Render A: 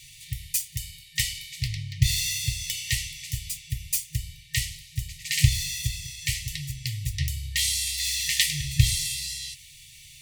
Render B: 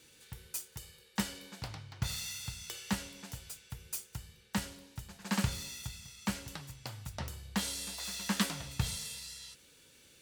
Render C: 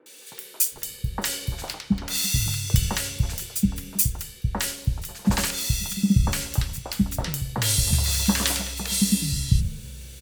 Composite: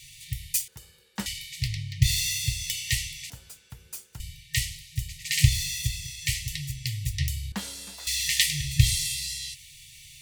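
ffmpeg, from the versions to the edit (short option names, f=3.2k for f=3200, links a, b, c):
-filter_complex "[1:a]asplit=3[a][b][c];[0:a]asplit=4[d][e][f][g];[d]atrim=end=0.682[h];[a]atrim=start=0.678:end=1.262[i];[e]atrim=start=1.258:end=3.302[j];[b]atrim=start=3.298:end=4.202[k];[f]atrim=start=4.198:end=7.522[l];[c]atrim=start=7.518:end=8.072[m];[g]atrim=start=8.068[n];[h][i]acrossfade=d=0.004:c1=hsin:c2=hsin[o];[o][j]acrossfade=d=0.004:c1=hsin:c2=hsin[p];[p][k]acrossfade=d=0.004:c1=hsin:c2=hsin[q];[q][l]acrossfade=d=0.004:c1=hsin:c2=hsin[r];[r][m]acrossfade=d=0.004:c1=hsin:c2=hsin[s];[s][n]acrossfade=d=0.004:c1=hsin:c2=hsin"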